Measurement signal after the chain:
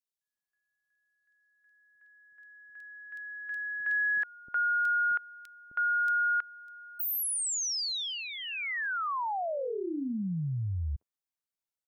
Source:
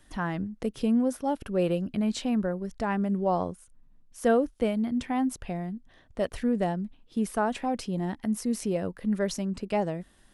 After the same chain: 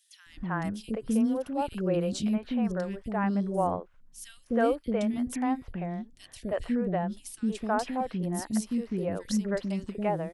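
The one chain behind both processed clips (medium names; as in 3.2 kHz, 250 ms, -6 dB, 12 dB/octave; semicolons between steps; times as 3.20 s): three bands offset in time highs, lows, mids 260/320 ms, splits 380/2800 Hz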